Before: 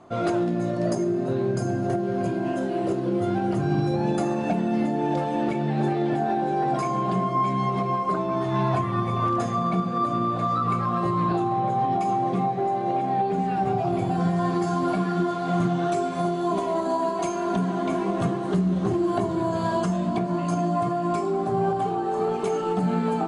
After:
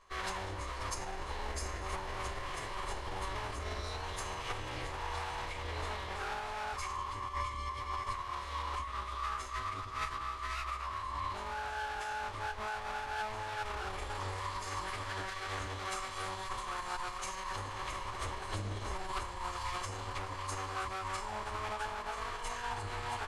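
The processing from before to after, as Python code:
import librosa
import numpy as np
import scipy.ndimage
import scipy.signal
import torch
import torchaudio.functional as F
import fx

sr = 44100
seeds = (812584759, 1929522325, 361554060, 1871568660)

y = fx.lower_of_two(x, sr, delay_ms=0.96)
y = fx.tone_stack(y, sr, knobs='10-0-10')
y = fx.rider(y, sr, range_db=10, speed_s=0.5)
y = fx.pitch_keep_formants(y, sr, semitones=-10.5)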